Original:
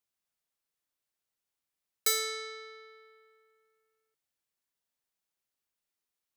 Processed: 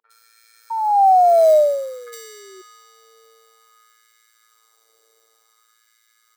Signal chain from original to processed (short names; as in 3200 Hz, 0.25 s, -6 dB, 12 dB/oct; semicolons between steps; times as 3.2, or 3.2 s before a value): per-bin compression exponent 0.2; Doppler pass-by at 1.36, 17 m/s, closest 1.9 m; in parallel at -2 dB: upward compressor, threshold -49 dBFS; on the sum: tilt -2 dB/oct; three bands offset in time lows, mids, highs 50/110 ms, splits 240/2100 Hz; robotiser 113 Hz; painted sound fall, 0.7–2.62, 370–920 Hz -24 dBFS; LFO high-pass sine 0.54 Hz 560–1800 Hz; gain +5 dB